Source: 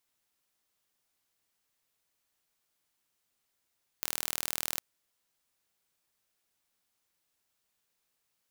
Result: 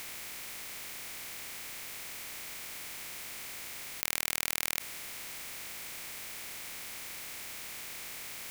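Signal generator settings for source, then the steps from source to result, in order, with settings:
impulse train 39.9 per second, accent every 0, −5 dBFS 0.76 s
compressor on every frequency bin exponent 0.2
parametric band 2,200 Hz +8 dB 0.5 octaves

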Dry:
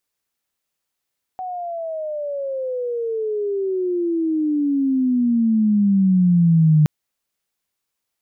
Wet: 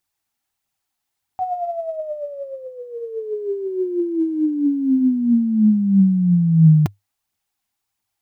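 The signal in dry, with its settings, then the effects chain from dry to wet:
glide logarithmic 750 Hz → 150 Hz −25.5 dBFS → −10 dBFS 5.47 s
thirty-one-band graphic EQ 100 Hz +11 dB, 500 Hz −11 dB, 800 Hz +8 dB
phase shifter 1.5 Hz, delay 4.8 ms, feedback 41%

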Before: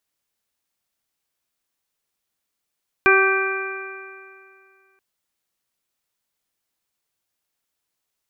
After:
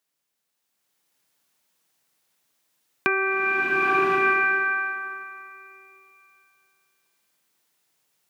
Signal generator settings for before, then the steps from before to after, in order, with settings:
stiff-string partials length 1.93 s, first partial 384 Hz, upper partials −9/−2.5/1/−13/−0.5 dB, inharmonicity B 0.0019, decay 2.30 s, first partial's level −15.5 dB
high-pass filter 120 Hz 24 dB per octave
downward compressor, threshold −20 dBFS
slow-attack reverb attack 1,060 ms, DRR −8 dB

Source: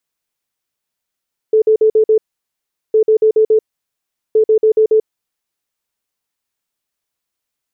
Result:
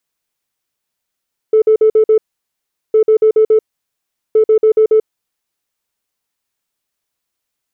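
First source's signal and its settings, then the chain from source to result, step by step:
beeps in groups sine 436 Hz, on 0.09 s, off 0.05 s, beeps 5, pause 0.76 s, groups 3, −7 dBFS
in parallel at −10 dB: soft clipping −15 dBFS

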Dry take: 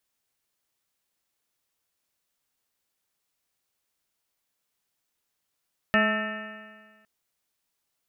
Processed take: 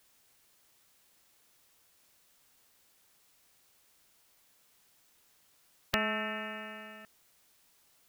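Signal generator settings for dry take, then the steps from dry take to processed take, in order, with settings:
stiff-string partials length 1.11 s, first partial 213 Hz, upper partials −11/−1/−11.5/−19.5/−2/−15.5/2.5/−15.5/−13/−8/−10 dB, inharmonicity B 0.0017, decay 1.57 s, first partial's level −23 dB
every bin compressed towards the loudest bin 2 to 1

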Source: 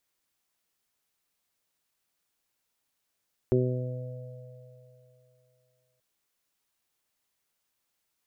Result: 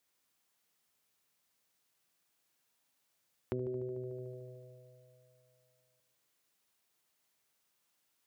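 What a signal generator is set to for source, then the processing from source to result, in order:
harmonic partials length 2.48 s, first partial 126 Hz, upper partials −3/4/−7.5/−16.5 dB, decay 2.68 s, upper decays 1.28/0.76/3.12/3.77 s, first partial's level −24 dB
echo machine with several playback heads 74 ms, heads first and second, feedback 60%, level −10 dB
downward compressor 2.5 to 1, threshold −40 dBFS
high-pass filter 84 Hz

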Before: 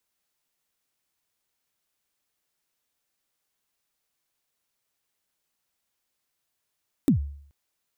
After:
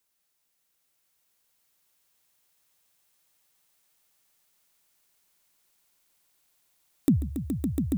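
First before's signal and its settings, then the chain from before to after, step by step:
synth kick length 0.43 s, from 320 Hz, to 71 Hz, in 108 ms, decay 0.60 s, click on, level −13 dB
high-shelf EQ 6,300 Hz +5 dB
echo that builds up and dies away 140 ms, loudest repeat 8, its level −6 dB

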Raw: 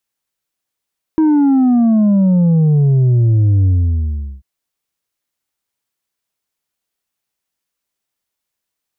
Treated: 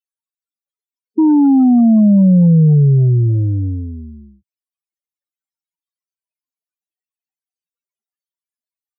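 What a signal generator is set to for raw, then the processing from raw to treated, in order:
bass drop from 320 Hz, over 3.24 s, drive 4 dB, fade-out 0.76 s, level −9 dB
high-pass filter 120 Hz 24 dB per octave
dynamic equaliser 160 Hz, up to +3 dB, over −24 dBFS, Q 0.89
spectral peaks only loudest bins 8

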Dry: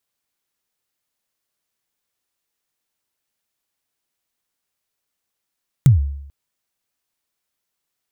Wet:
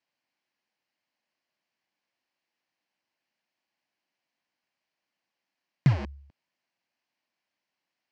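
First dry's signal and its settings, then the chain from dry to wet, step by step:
synth kick length 0.44 s, from 150 Hz, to 70 Hz, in 133 ms, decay 0.77 s, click on, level −4.5 dB
in parallel at −9 dB: wrap-around overflow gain 19.5 dB
on the sum: loudspeaker in its box 200–4,500 Hz, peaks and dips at 430 Hz −10 dB, 1,300 Hz −8 dB, 3,600 Hz −10 dB

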